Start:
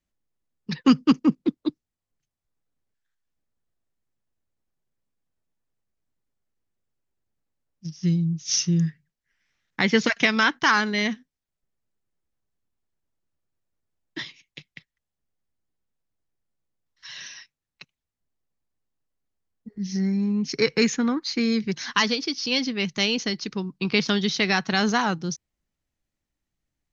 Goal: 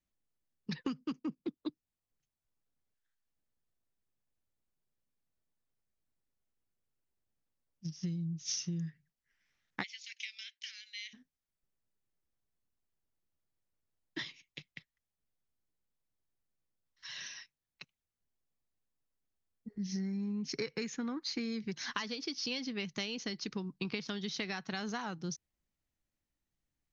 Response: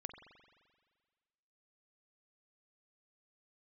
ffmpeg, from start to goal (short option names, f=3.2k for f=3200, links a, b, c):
-filter_complex "[0:a]acompressor=threshold=-28dB:ratio=20,asplit=3[a][b][c];[a]afade=t=out:st=9.82:d=0.02[d];[b]asuperpass=centerf=5100:order=12:qfactor=0.62,afade=t=in:st=9.82:d=0.02,afade=t=out:st=11.13:d=0.02[e];[c]afade=t=in:st=11.13:d=0.02[f];[d][e][f]amix=inputs=3:normalize=0,volume=-5.5dB"